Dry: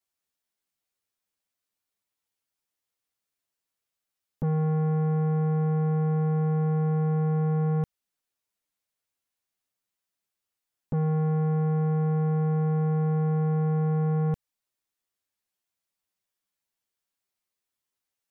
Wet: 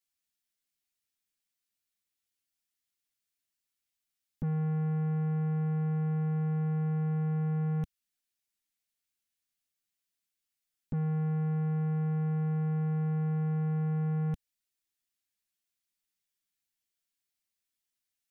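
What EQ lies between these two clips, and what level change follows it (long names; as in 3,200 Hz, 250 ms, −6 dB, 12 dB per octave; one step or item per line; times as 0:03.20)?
graphic EQ with 10 bands 125 Hz −6 dB, 500 Hz −10 dB, 1,000 Hz −9 dB
0.0 dB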